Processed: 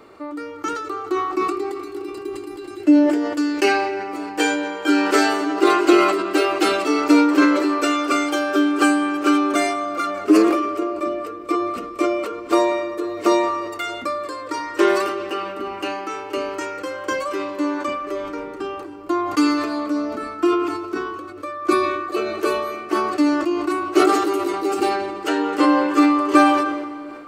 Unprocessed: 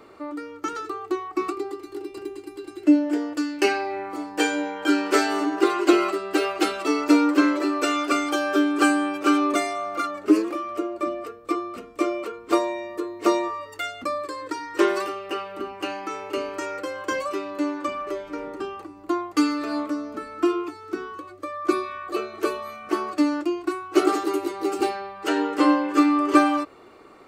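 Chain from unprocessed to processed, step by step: on a send at -12.5 dB: reverb RT60 3.2 s, pre-delay 0.16 s; on the sum: sustainer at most 40 dB/s; gain +2 dB

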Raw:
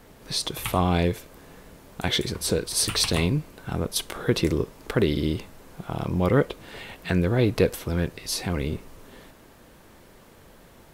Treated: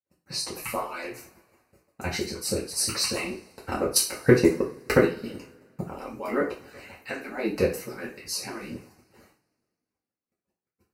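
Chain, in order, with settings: median-filter separation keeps percussive; gate -50 dBFS, range -44 dB; HPF 110 Hz 6 dB/oct; 3.29–5.87 transient shaper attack +11 dB, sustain -6 dB; Butterworth band-stop 3400 Hz, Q 2.9; two-slope reverb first 0.35 s, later 2 s, from -27 dB, DRR -5 dB; gain -7.5 dB

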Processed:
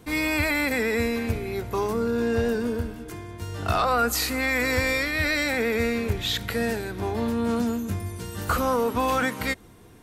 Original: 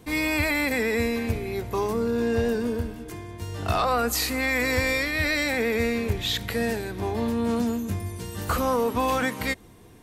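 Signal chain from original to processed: bell 1400 Hz +6 dB 0.21 oct

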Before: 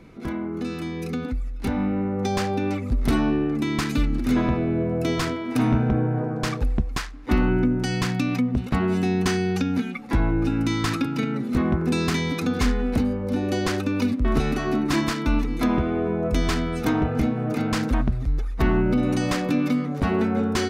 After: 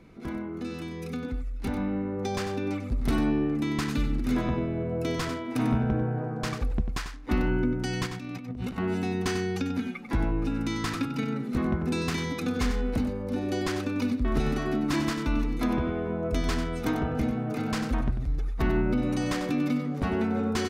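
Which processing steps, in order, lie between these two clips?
8.06–8.78 negative-ratio compressor -31 dBFS, ratio -1; on a send: echo 95 ms -9 dB; on the sum: gain -5.5 dB

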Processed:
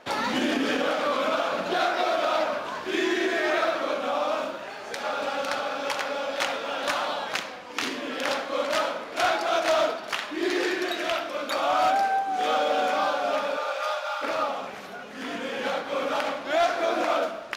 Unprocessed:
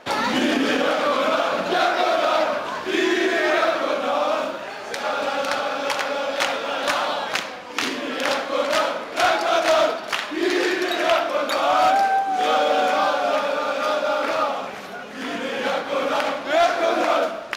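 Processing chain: 10.93–11.5 bell 810 Hz -5.5 dB 1.6 oct; 13.56–14.21 HPF 390 Hz -> 850 Hz 24 dB/oct; gain -5 dB

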